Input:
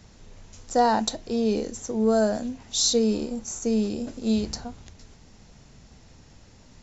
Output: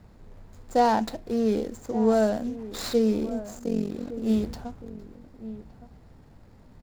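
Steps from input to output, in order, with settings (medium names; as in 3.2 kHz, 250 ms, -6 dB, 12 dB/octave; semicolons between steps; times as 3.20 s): median filter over 15 samples; 3.59–4.14 s: AM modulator 45 Hz, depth 80%; echo from a far wall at 200 m, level -14 dB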